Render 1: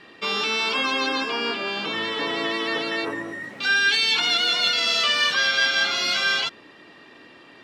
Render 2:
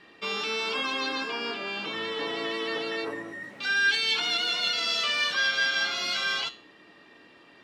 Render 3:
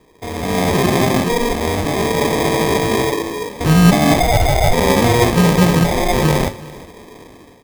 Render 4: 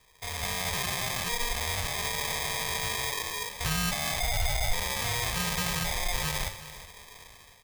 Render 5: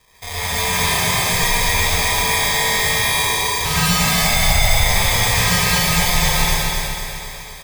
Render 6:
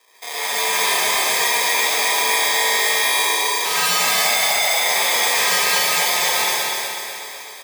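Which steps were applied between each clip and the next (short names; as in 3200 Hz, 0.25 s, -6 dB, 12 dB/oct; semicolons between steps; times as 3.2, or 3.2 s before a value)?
resonator 64 Hz, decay 0.38 s, harmonics odd, mix 60%
AGC gain up to 13 dB; sample-and-hold 31×; echo 0.371 s -20 dB; gain +2.5 dB
passive tone stack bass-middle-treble 10-0-10; limiter -14 dBFS, peak gain reduction 11 dB
feedback echo 0.249 s, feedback 52%, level -3 dB; non-linear reverb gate 0.17 s rising, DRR -5.5 dB; gain +5 dB
HPF 310 Hz 24 dB/oct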